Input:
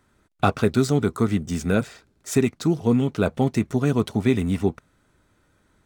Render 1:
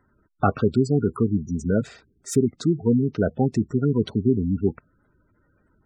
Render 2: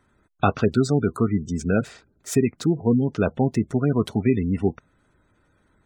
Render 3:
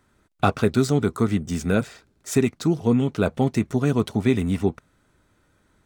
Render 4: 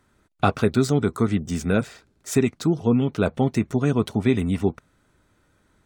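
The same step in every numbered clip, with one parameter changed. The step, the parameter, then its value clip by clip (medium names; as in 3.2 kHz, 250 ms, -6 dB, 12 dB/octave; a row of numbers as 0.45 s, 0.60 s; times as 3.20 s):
spectral gate, under each frame's peak: -15 dB, -25 dB, -60 dB, -45 dB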